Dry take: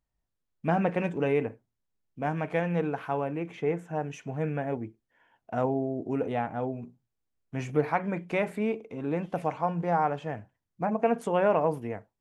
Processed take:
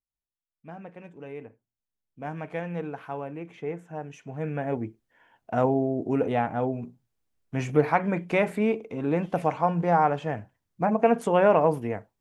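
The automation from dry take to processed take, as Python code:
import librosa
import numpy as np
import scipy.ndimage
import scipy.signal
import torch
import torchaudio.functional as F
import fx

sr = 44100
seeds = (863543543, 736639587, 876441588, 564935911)

y = fx.gain(x, sr, db=fx.line((0.99, -16.5), (2.34, -4.5), (4.2, -4.5), (4.84, 4.5)))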